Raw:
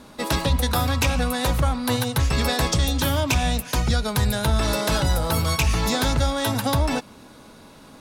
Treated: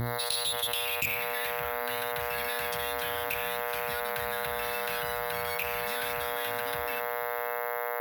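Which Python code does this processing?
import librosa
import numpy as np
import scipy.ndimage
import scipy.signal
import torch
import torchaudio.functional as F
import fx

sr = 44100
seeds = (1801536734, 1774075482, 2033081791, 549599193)

y = fx.curve_eq(x, sr, hz=(160.0, 1300.0, 2500.0, 11000.0), db=(0, -14, 9, -8))
y = fx.echo_diffused(y, sr, ms=518, feedback_pct=54, wet_db=-13.0)
y = fx.filter_sweep_bandpass(y, sr, from_hz=4100.0, to_hz=1500.0, start_s=0.36, end_s=1.64, q=5.8)
y = fx.dmg_buzz(y, sr, base_hz=120.0, harmonics=18, level_db=-32.0, tilt_db=-5, odd_only=False)
y = np.repeat(y[::3], 3)[:len(y)]
y = 10.0 ** (-18.0 / 20.0) * np.tanh(y / 10.0 ** (-18.0 / 20.0))
y = fx.bass_treble(y, sr, bass_db=9, treble_db=8)
y = fx.hum_notches(y, sr, base_hz=60, count=6)
y = fx.env_flatten(y, sr, amount_pct=70)
y = F.gain(torch.from_numpy(y), -8.0).numpy()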